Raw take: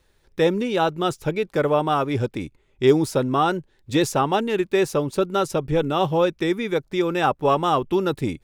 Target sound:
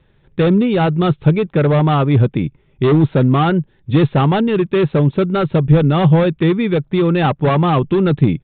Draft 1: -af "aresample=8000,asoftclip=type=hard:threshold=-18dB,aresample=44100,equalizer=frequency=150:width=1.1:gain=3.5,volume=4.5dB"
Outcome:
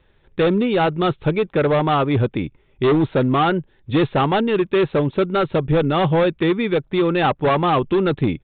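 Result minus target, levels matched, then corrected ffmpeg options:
125 Hz band −5.0 dB
-af "aresample=8000,asoftclip=type=hard:threshold=-18dB,aresample=44100,equalizer=frequency=150:width=1.1:gain=13.5,volume=4.5dB"

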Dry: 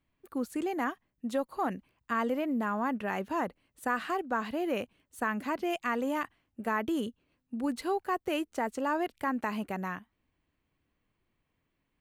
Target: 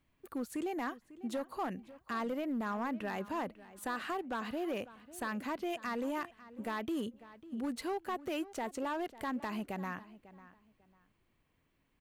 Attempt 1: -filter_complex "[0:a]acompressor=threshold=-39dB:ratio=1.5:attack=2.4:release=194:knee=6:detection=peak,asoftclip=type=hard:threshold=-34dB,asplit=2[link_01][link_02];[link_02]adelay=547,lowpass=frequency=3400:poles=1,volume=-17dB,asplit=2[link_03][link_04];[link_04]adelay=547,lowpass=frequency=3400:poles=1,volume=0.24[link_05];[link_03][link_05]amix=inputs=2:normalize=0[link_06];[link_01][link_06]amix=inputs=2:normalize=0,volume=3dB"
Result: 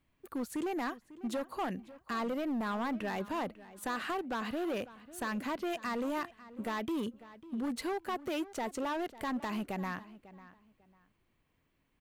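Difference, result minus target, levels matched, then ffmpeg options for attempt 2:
downward compressor: peak gain reduction −3 dB
-filter_complex "[0:a]acompressor=threshold=-48.5dB:ratio=1.5:attack=2.4:release=194:knee=6:detection=peak,asoftclip=type=hard:threshold=-34dB,asplit=2[link_01][link_02];[link_02]adelay=547,lowpass=frequency=3400:poles=1,volume=-17dB,asplit=2[link_03][link_04];[link_04]adelay=547,lowpass=frequency=3400:poles=1,volume=0.24[link_05];[link_03][link_05]amix=inputs=2:normalize=0[link_06];[link_01][link_06]amix=inputs=2:normalize=0,volume=3dB"

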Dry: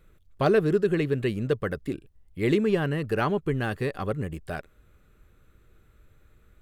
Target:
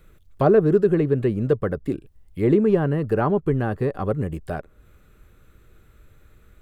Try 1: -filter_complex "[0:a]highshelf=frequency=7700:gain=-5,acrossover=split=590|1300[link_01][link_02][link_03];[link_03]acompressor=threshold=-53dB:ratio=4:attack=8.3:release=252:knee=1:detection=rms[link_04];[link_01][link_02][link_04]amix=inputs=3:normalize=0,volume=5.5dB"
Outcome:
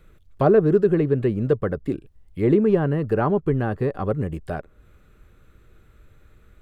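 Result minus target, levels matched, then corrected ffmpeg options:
8,000 Hz band −3.5 dB
-filter_complex "[0:a]highshelf=frequency=7700:gain=2.5,acrossover=split=590|1300[link_01][link_02][link_03];[link_03]acompressor=threshold=-53dB:ratio=4:attack=8.3:release=252:knee=1:detection=rms[link_04];[link_01][link_02][link_04]amix=inputs=3:normalize=0,volume=5.5dB"

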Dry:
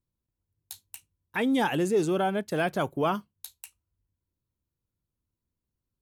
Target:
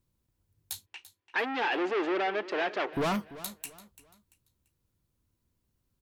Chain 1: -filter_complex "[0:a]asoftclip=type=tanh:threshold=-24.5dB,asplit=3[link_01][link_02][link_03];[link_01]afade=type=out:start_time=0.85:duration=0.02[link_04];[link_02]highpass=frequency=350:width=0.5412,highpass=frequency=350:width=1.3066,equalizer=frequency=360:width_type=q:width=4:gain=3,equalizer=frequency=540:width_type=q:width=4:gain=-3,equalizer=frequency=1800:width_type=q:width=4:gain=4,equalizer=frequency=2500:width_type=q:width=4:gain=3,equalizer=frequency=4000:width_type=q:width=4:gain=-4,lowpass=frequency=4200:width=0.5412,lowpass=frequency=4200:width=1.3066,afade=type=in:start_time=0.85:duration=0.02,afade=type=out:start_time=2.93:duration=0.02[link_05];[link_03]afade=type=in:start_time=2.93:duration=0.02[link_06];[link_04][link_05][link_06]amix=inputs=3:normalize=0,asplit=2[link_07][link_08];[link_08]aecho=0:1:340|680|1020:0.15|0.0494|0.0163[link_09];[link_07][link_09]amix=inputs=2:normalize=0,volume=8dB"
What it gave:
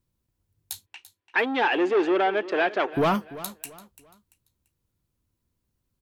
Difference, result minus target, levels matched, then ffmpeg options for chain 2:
soft clipping: distortion −7 dB
-filter_complex "[0:a]asoftclip=type=tanh:threshold=-34.5dB,asplit=3[link_01][link_02][link_03];[link_01]afade=type=out:start_time=0.85:duration=0.02[link_04];[link_02]highpass=frequency=350:width=0.5412,highpass=frequency=350:width=1.3066,equalizer=frequency=360:width_type=q:width=4:gain=3,equalizer=frequency=540:width_type=q:width=4:gain=-3,equalizer=frequency=1800:width_type=q:width=4:gain=4,equalizer=frequency=2500:width_type=q:width=4:gain=3,equalizer=frequency=4000:width_type=q:width=4:gain=-4,lowpass=frequency=4200:width=0.5412,lowpass=frequency=4200:width=1.3066,afade=type=in:start_time=0.85:duration=0.02,afade=type=out:start_time=2.93:duration=0.02[link_05];[link_03]afade=type=in:start_time=2.93:duration=0.02[link_06];[link_04][link_05][link_06]amix=inputs=3:normalize=0,asplit=2[link_07][link_08];[link_08]aecho=0:1:340|680|1020:0.15|0.0494|0.0163[link_09];[link_07][link_09]amix=inputs=2:normalize=0,volume=8dB"

